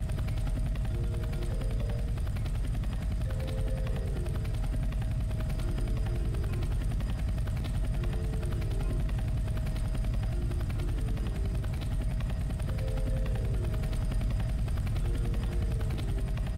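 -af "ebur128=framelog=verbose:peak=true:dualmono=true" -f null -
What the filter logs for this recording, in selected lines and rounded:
Integrated loudness:
  I:         -30.2 LUFS
  Threshold: -40.2 LUFS
Loudness range:
  LRA:         1.1 LU
  Threshold: -50.2 LUFS
  LRA low:   -30.7 LUFS
  LRA high:  -29.6 LUFS
True peak:
  Peak:      -21.2 dBFS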